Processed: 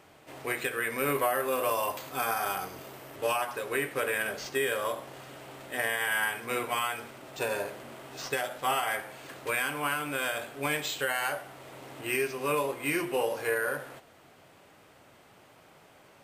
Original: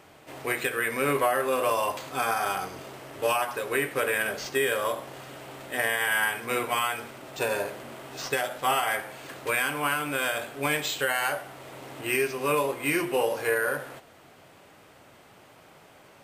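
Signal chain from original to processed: 0.98–3.16 s: peaking EQ 14 kHz +10 dB 0.48 oct; trim -3.5 dB

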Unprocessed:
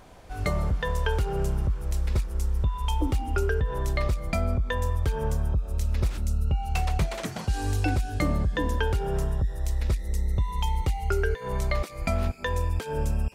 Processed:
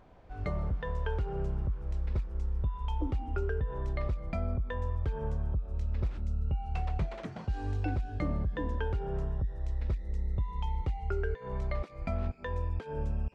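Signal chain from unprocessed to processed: tape spacing loss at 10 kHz 27 dB; trim -6 dB

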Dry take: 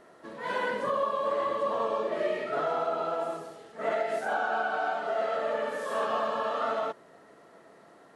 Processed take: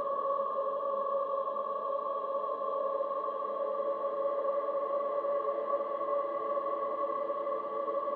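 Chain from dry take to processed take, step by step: resonances exaggerated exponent 1.5; Paulstretch 15×, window 0.50 s, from 1.02 s; trim -4.5 dB

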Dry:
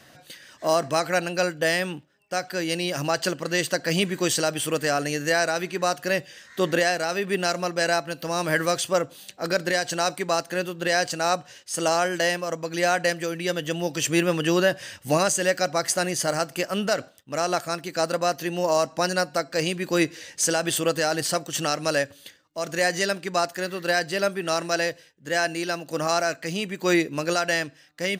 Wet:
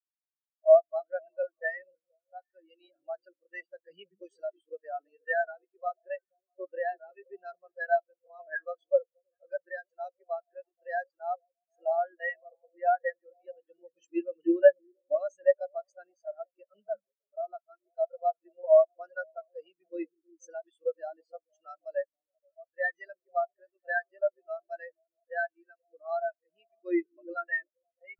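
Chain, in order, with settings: frequency weighting A; repeats whose band climbs or falls 160 ms, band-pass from 200 Hz, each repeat 0.7 oct, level -3 dB; spectral contrast expander 4:1

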